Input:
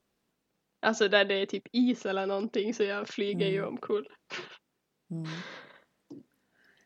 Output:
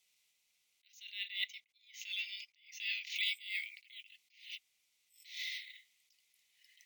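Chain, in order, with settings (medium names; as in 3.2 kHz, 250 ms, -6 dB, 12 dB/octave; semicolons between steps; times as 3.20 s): Chebyshev high-pass 2 kHz, order 8; careless resampling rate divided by 2×, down none, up hold; 0.97–3.16 s: treble shelf 5.6 kHz -9 dB; attacks held to a fixed rise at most 120 dB/s; trim +8.5 dB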